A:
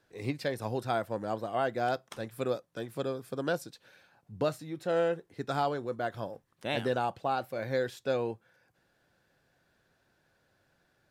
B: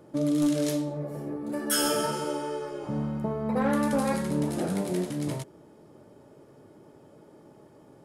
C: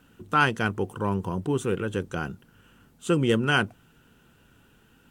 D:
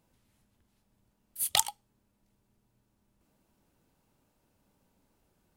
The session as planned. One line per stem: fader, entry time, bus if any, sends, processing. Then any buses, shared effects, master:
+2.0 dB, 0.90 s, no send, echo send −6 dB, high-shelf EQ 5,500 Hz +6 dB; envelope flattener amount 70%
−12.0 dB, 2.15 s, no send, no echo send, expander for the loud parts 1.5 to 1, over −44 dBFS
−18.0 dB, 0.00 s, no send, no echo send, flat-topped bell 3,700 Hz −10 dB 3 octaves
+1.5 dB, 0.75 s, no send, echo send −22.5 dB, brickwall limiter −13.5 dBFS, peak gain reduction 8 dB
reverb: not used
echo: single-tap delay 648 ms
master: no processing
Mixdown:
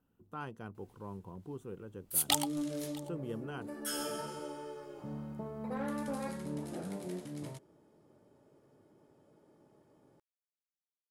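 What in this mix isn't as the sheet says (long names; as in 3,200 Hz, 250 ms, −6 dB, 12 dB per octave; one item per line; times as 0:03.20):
stem A: muted
stem B: missing expander for the loud parts 1.5 to 1, over −44 dBFS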